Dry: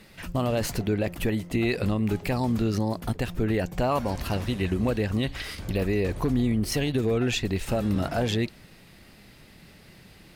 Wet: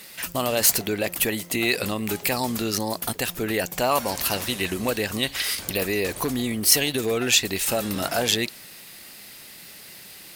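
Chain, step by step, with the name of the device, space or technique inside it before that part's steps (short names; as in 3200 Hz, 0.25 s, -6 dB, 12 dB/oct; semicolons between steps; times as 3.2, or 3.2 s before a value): turntable without a phono preamp (RIAA curve recording; white noise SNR 33 dB); gain +4.5 dB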